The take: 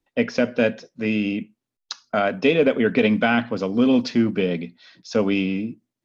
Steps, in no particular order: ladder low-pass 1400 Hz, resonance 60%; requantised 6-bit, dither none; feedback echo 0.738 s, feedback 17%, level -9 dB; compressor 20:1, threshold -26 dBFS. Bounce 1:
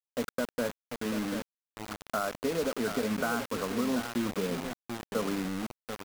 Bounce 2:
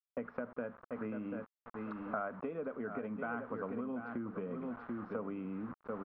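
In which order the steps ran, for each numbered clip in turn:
ladder low-pass > compressor > feedback echo > requantised; feedback echo > requantised > compressor > ladder low-pass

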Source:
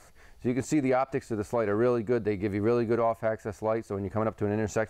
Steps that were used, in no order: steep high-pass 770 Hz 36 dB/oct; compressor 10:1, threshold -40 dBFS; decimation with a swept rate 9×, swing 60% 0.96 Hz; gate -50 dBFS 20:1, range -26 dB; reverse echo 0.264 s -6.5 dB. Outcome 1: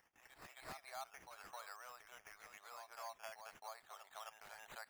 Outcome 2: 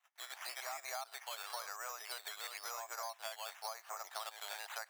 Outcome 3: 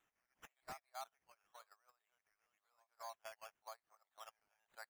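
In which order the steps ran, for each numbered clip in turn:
compressor > gate > steep high-pass > decimation with a swept rate > reverse echo; reverse echo > gate > decimation with a swept rate > steep high-pass > compressor; reverse echo > compressor > steep high-pass > gate > decimation with a swept rate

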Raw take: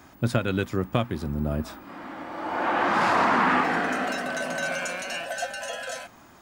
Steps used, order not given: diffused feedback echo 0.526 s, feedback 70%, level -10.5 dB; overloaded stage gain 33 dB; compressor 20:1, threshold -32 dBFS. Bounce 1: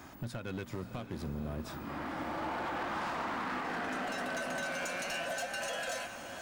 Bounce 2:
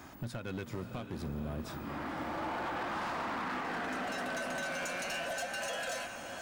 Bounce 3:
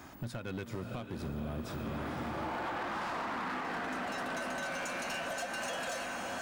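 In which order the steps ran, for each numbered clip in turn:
compressor > overloaded stage > diffused feedback echo; compressor > diffused feedback echo > overloaded stage; diffused feedback echo > compressor > overloaded stage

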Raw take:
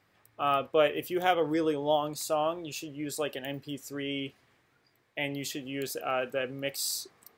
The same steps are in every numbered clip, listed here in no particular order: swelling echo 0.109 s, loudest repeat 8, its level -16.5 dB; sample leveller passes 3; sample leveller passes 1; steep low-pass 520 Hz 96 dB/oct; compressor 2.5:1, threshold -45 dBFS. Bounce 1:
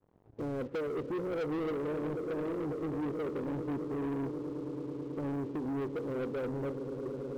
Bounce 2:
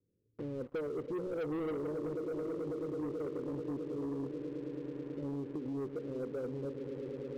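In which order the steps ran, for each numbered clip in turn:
steep low-pass > compressor > second sample leveller > swelling echo > first sample leveller; swelling echo > second sample leveller > steep low-pass > first sample leveller > compressor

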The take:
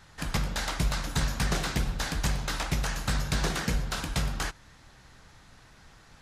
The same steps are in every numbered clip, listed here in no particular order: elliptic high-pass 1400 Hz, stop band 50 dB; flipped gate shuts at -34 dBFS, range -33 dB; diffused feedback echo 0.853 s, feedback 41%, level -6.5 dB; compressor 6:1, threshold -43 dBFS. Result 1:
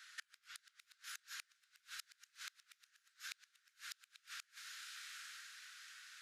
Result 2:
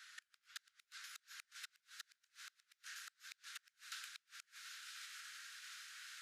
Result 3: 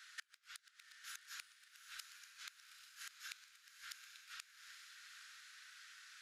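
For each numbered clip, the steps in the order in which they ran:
elliptic high-pass > compressor > diffused feedback echo > flipped gate; diffused feedback echo > compressor > flipped gate > elliptic high-pass; elliptic high-pass > compressor > flipped gate > diffused feedback echo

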